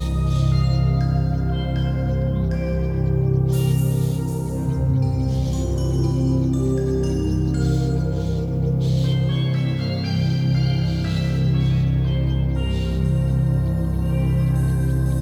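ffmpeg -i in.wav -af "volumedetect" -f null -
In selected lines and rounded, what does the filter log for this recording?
mean_volume: -19.5 dB
max_volume: -7.5 dB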